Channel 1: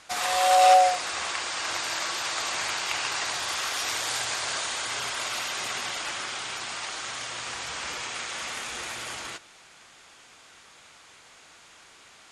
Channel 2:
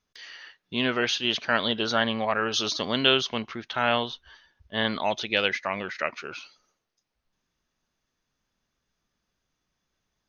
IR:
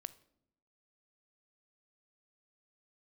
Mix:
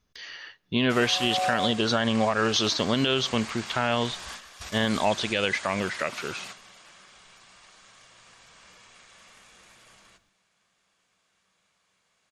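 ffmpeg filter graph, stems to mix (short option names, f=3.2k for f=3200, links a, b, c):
-filter_complex "[0:a]equalizer=f=190:t=o:w=0.37:g=14,adelay=800,volume=-12.5dB,asplit=2[a][b];[b]volume=-3.5dB[c];[1:a]lowshelf=f=270:g=8,volume=0.5dB,asplit=3[d][e][f];[e]volume=-7.5dB[g];[f]apad=whole_len=578240[h];[a][h]sidechaingate=range=-33dB:threshold=-49dB:ratio=16:detection=peak[i];[2:a]atrim=start_sample=2205[j];[c][g]amix=inputs=2:normalize=0[k];[k][j]afir=irnorm=-1:irlink=0[l];[i][d][l]amix=inputs=3:normalize=0,alimiter=limit=-12dB:level=0:latency=1:release=89"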